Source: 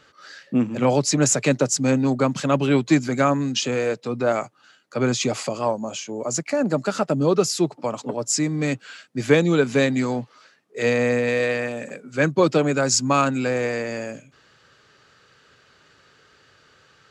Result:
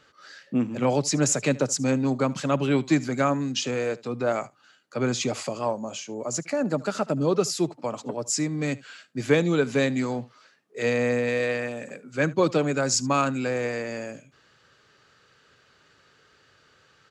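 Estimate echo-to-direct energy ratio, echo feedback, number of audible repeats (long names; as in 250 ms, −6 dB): −21.5 dB, repeats not evenly spaced, 1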